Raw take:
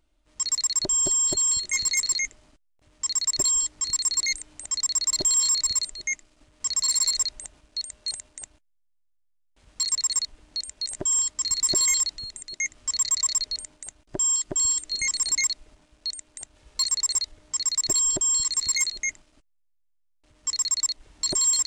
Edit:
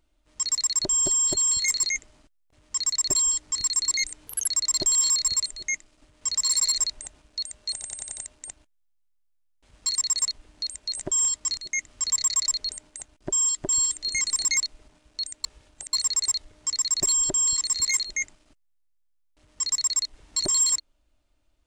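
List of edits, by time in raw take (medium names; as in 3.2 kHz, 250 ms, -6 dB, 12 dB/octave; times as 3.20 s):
1.62–1.91 s: delete
4.56–4.86 s: speed 149%
8.11 s: stutter 0.09 s, 6 plays
11.51–12.44 s: delete
16.31–16.80 s: reverse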